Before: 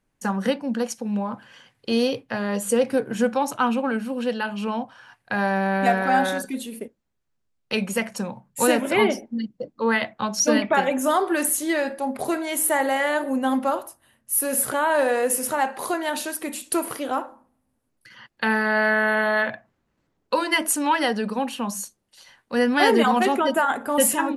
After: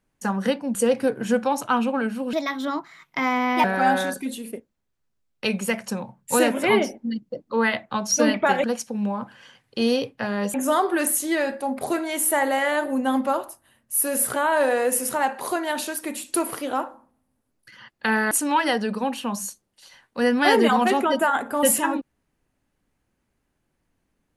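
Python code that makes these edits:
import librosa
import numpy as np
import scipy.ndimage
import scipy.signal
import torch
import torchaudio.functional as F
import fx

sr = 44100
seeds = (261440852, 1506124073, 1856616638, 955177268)

y = fx.edit(x, sr, fx.move(start_s=0.75, length_s=1.9, to_s=10.92),
    fx.speed_span(start_s=4.23, length_s=1.69, speed=1.29),
    fx.cut(start_s=18.69, length_s=1.97), tone=tone)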